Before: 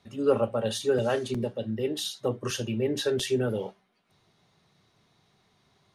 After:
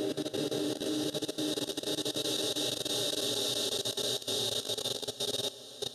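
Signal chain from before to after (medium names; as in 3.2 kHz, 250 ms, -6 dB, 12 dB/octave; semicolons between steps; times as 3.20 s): echo that smears into a reverb 909 ms, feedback 54%, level -12 dB; Paulstretch 36×, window 0.25 s, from 1.93 s; level held to a coarse grid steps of 16 dB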